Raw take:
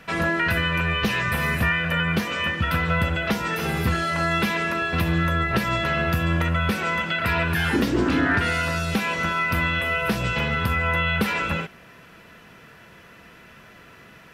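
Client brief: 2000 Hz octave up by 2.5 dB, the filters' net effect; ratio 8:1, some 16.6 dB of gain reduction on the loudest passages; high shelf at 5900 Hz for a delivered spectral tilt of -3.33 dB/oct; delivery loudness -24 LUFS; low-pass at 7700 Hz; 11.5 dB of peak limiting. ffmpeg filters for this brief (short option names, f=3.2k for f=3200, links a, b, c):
-af "lowpass=7.7k,equalizer=f=2k:t=o:g=3.5,highshelf=f=5.9k:g=-5,acompressor=threshold=-35dB:ratio=8,volume=19dB,alimiter=limit=-16.5dB:level=0:latency=1"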